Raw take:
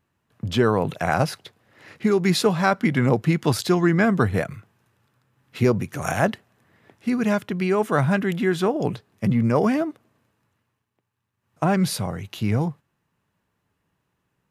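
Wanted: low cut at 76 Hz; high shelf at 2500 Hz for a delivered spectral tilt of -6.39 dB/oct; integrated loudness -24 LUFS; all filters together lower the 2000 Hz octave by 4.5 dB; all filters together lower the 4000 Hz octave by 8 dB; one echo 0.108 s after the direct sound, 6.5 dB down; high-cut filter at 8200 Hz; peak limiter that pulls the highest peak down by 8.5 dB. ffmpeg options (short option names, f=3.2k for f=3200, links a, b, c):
-af "highpass=76,lowpass=8.2k,equalizer=f=2k:t=o:g=-3.5,highshelf=f=2.5k:g=-3.5,equalizer=f=4k:t=o:g=-5.5,alimiter=limit=-14.5dB:level=0:latency=1,aecho=1:1:108:0.473,volume=0.5dB"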